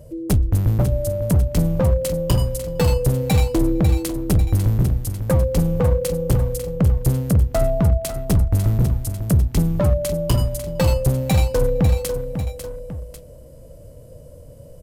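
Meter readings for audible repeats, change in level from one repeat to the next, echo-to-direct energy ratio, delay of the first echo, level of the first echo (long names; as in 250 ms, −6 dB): 2, −5.5 dB, −7.5 dB, 547 ms, −8.5 dB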